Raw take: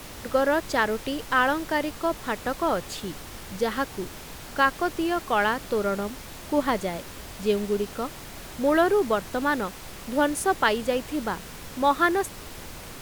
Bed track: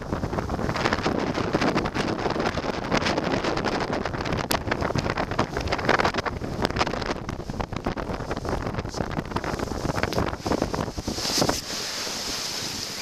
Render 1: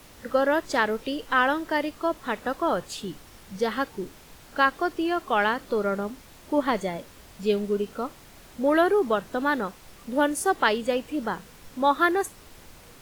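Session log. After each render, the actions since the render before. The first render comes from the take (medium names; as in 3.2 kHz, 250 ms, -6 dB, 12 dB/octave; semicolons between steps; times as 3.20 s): noise print and reduce 9 dB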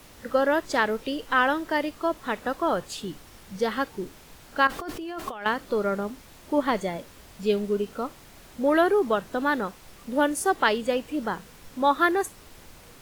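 4.67–5.46 s: compressor with a negative ratio -34 dBFS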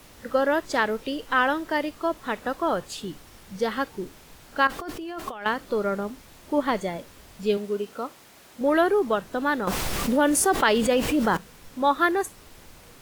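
7.57–8.61 s: high-pass 280 Hz 6 dB/octave; 9.67–11.37 s: level flattener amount 70%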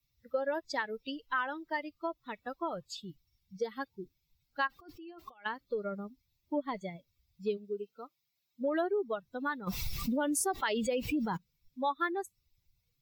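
expander on every frequency bin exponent 2; compression 2.5:1, threshold -32 dBFS, peak gain reduction 10 dB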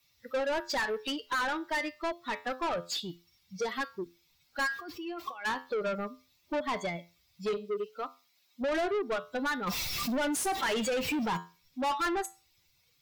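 feedback comb 86 Hz, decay 0.31 s, harmonics all, mix 50%; overdrive pedal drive 26 dB, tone 6.3 kHz, clips at -23.5 dBFS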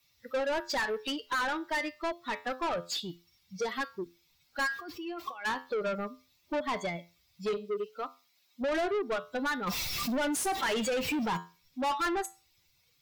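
no audible change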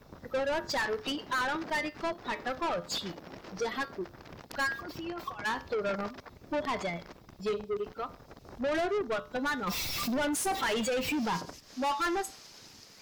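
add bed track -22 dB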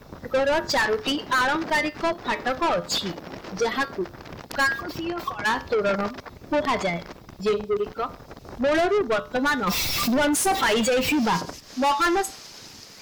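trim +9 dB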